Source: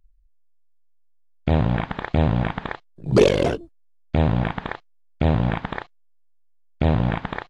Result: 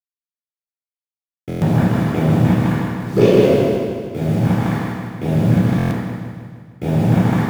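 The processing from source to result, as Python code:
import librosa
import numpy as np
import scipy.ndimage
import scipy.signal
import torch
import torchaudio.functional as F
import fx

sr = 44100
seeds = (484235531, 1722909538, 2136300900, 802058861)

p1 = scipy.signal.sosfilt(scipy.signal.butter(4, 110.0, 'highpass', fs=sr, output='sos'), x)
p2 = fx.high_shelf(p1, sr, hz=2300.0, db=-5.5)
p3 = fx.rider(p2, sr, range_db=10, speed_s=2.0)
p4 = p2 + F.gain(torch.from_numpy(p3), 2.0).numpy()
p5 = fx.rotary_switch(p4, sr, hz=5.5, then_hz=0.75, switch_at_s=3.33)
p6 = fx.quant_dither(p5, sr, seeds[0], bits=6, dither='none')
p7 = p6 + fx.echo_feedback(p6, sr, ms=155, feedback_pct=56, wet_db=-4, dry=0)
p8 = fx.room_shoebox(p7, sr, seeds[1], volume_m3=550.0, walls='mixed', distance_m=4.0)
p9 = fx.buffer_glitch(p8, sr, at_s=(1.48, 5.77), block=1024, repeats=5)
y = F.gain(torch.from_numpy(p9), -11.5).numpy()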